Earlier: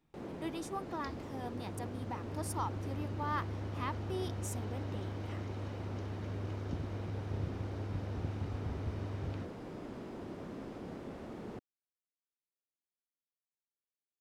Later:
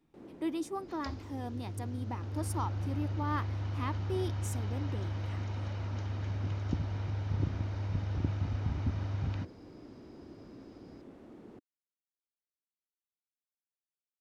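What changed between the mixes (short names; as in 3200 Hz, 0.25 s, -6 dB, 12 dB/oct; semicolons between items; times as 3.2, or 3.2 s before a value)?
first sound -10.5 dB; second sound +5.5 dB; master: add bell 300 Hz +7.5 dB 0.8 oct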